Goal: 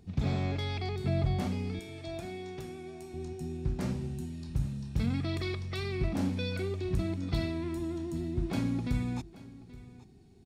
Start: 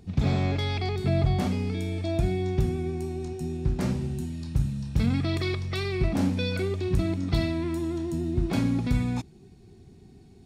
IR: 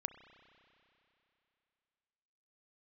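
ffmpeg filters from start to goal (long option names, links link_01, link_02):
-filter_complex "[0:a]asettb=1/sr,asplit=3[link_01][link_02][link_03];[link_01]atrim=end=1.794[link_04];[link_02]atrim=start=1.79:end=3.14,asetpts=PTS-STARTPTS,afade=type=in:duration=0.004:curve=qsin,afade=type=out:start_time=1.346:duration=0.004:curve=qsin,highpass=frequency=600:poles=1[link_05];[link_03]atrim=start=3.136[link_06];[link_04][link_05]acrossfade=duration=0.004:curve1=hsin:curve2=qsin[link_07];[link_07][link_06]acrossfade=duration=0.004:curve1=qsin:curve2=hsin,aecho=1:1:829:0.119,volume=-6dB"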